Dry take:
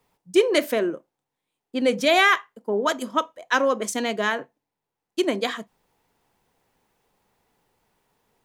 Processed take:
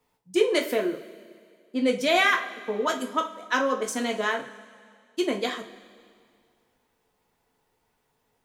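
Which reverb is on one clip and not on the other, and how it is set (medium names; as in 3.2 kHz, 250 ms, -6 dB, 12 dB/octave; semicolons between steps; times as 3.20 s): two-slope reverb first 0.29 s, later 2.1 s, from -18 dB, DRR 1.5 dB; trim -5 dB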